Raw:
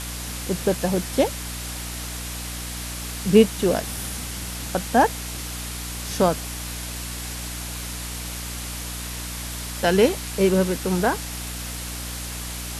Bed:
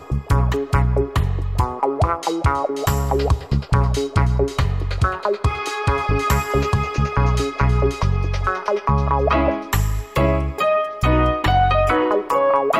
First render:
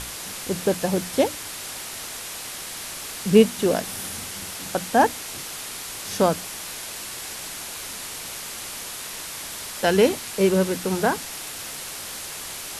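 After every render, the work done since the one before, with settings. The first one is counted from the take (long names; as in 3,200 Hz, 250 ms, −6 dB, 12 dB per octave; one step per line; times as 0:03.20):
mains-hum notches 60/120/180/240/300 Hz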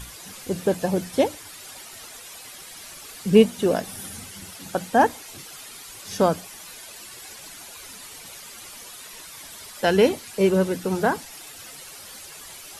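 broadband denoise 11 dB, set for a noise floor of −35 dBFS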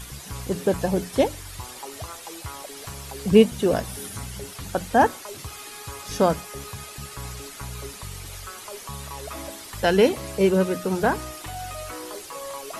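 mix in bed −19.5 dB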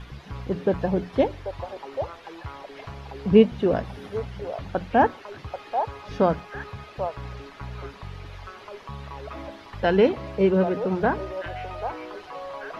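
high-frequency loss of the air 300 metres
echo through a band-pass that steps 787 ms, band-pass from 750 Hz, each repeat 1.4 octaves, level −5.5 dB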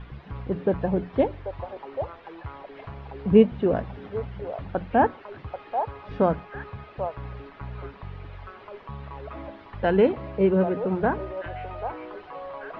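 high-frequency loss of the air 340 metres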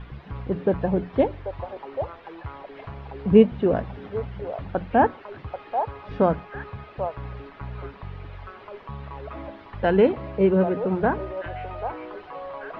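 level +1.5 dB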